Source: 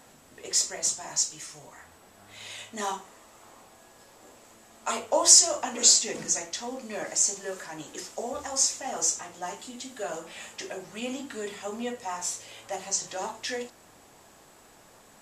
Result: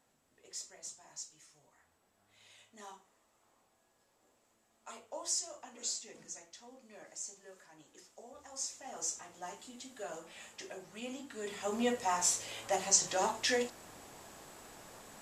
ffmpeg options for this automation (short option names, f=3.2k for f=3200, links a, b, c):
-af "volume=1.5dB,afade=t=in:st=8.35:d=1.05:silence=0.316228,afade=t=in:st=11.35:d=0.52:silence=0.281838"